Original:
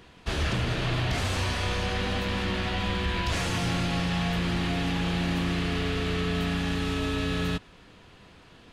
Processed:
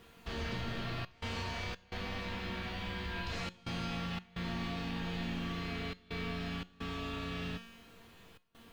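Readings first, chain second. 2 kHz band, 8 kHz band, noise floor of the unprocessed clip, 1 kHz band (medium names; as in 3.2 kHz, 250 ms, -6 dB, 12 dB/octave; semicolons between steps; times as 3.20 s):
-10.0 dB, -15.5 dB, -53 dBFS, -10.0 dB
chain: low-pass 5.5 kHz 12 dB/octave; in parallel at +2 dB: compression, threshold -38 dBFS, peak gain reduction 13.5 dB; on the sum: bit crusher 9-bit; feedback comb 230 Hz, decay 1.2 s, mix 90%; trance gate "xxxxxx.xxx.xxx" 86 bpm -24 dB; feedback comb 180 Hz, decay 0.42 s, harmonics all, mix 50%; trim +9.5 dB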